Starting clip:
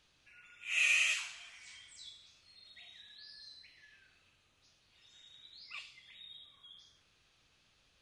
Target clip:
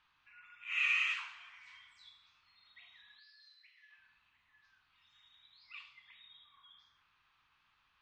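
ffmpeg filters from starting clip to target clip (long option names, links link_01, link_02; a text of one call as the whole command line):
ffmpeg -i in.wav -filter_complex "[0:a]lowpass=2500,lowshelf=frequency=750:width_type=q:width=3:gain=-10,asettb=1/sr,asplit=3[link_01][link_02][link_03];[link_01]atrim=end=3.194[link_04];[link_02]atrim=start=3.19:end=5.8,asetpts=PTS-STARTPTS,afade=type=in:duration=0.004:curve=qsin,afade=type=out:start_time=2.606:duration=0.004:curve=qsin,acrossover=split=410|1500[link_05][link_06][link_07];[link_06]adelay=710[link_08];[link_05]adelay=790[link_09];[link_09][link_08][link_07]amix=inputs=3:normalize=0,atrim=end_sample=115101[link_10];[link_03]atrim=start=5.796[link_11];[link_04][link_10]acrossfade=duration=0.004:curve1=hsin:curve2=qsin[link_12];[link_12][link_11]acrossfade=duration=0.004:curve1=qsin:curve2=hsin" out.wav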